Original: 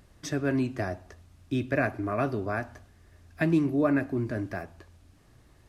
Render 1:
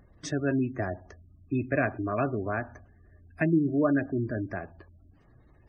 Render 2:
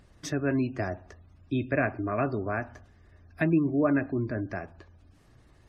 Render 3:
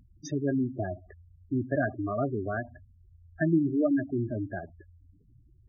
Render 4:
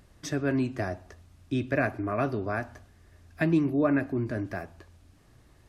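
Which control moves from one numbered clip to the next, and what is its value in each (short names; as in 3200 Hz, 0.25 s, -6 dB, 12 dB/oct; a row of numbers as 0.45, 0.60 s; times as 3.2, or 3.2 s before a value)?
spectral gate, under each frame's peak: -25, -35, -10, -55 dB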